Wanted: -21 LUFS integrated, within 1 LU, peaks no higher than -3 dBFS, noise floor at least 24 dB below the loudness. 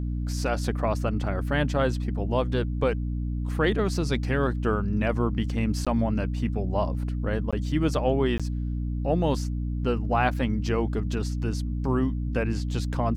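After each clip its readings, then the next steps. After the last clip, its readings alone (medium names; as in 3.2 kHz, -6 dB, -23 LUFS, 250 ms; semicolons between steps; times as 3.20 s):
dropouts 3; longest dropout 16 ms; hum 60 Hz; highest harmonic 300 Hz; hum level -26 dBFS; loudness -27.0 LUFS; peak level -10.5 dBFS; loudness target -21.0 LUFS
-> interpolate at 5.85/7.51/8.38 s, 16 ms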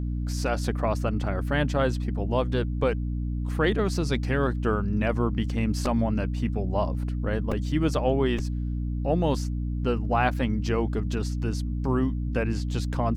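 dropouts 0; hum 60 Hz; highest harmonic 300 Hz; hum level -26 dBFS
-> hum notches 60/120/180/240/300 Hz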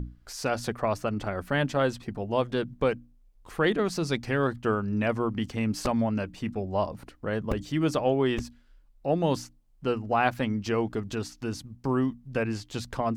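hum not found; loudness -29.0 LUFS; peak level -11.5 dBFS; loudness target -21.0 LUFS
-> trim +8 dB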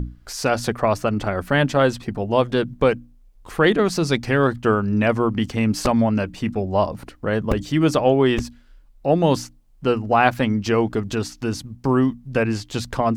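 loudness -21.0 LUFS; peak level -3.5 dBFS; noise floor -51 dBFS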